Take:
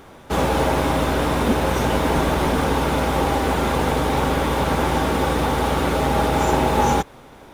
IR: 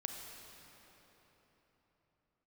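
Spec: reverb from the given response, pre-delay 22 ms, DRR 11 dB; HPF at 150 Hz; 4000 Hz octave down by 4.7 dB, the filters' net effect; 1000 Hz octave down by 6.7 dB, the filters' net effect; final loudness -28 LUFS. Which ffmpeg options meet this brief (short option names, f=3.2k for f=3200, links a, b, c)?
-filter_complex "[0:a]highpass=150,equalizer=f=1k:t=o:g=-8.5,equalizer=f=4k:t=o:g=-5.5,asplit=2[a][b];[1:a]atrim=start_sample=2205,adelay=22[c];[b][c]afir=irnorm=-1:irlink=0,volume=-10.5dB[d];[a][d]amix=inputs=2:normalize=0,volume=-5dB"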